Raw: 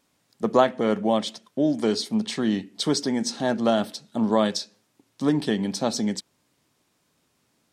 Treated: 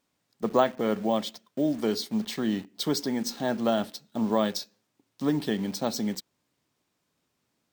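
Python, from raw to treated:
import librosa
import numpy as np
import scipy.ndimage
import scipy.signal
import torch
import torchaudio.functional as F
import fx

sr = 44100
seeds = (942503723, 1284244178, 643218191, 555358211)

p1 = fx.quant_dither(x, sr, seeds[0], bits=6, dither='none')
p2 = x + (p1 * 10.0 ** (-6.0 / 20.0))
p3 = np.repeat(scipy.signal.resample_poly(p2, 1, 2), 2)[:len(p2)]
y = p3 * 10.0 ** (-7.5 / 20.0)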